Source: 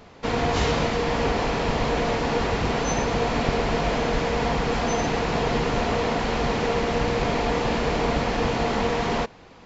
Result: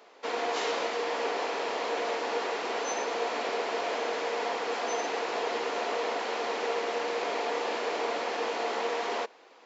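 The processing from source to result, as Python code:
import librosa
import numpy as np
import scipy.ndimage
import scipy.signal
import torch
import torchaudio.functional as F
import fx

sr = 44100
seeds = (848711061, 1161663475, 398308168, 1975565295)

y = scipy.signal.sosfilt(scipy.signal.butter(4, 360.0, 'highpass', fs=sr, output='sos'), x)
y = y * librosa.db_to_amplitude(-5.5)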